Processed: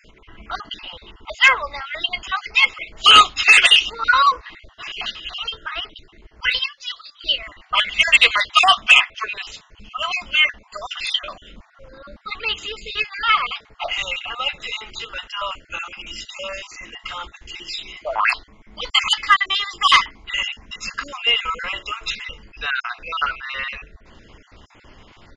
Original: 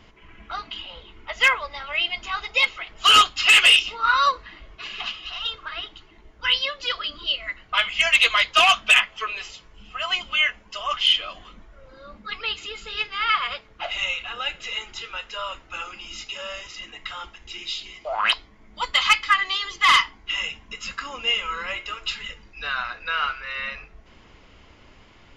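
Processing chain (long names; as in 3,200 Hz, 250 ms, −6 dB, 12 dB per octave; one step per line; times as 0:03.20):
time-frequency cells dropped at random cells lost 35%
0:06.66–0:07.21: first-order pre-emphasis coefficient 0.97
downsampling to 22,050 Hz
level +5 dB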